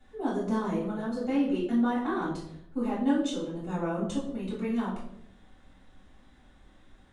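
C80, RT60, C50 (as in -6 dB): 7.5 dB, 0.75 s, 4.5 dB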